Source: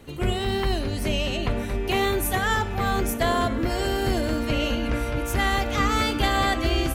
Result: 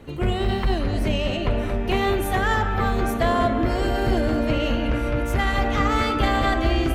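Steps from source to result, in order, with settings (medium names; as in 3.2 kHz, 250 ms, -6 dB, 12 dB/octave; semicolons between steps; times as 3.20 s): treble shelf 3.9 kHz -11.5 dB; de-hum 390.8 Hz, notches 33; in parallel at -5 dB: saturation -24 dBFS, distortion -11 dB; on the sum: reverberation RT60 0.50 s, pre-delay 150 ms, DRR 8 dB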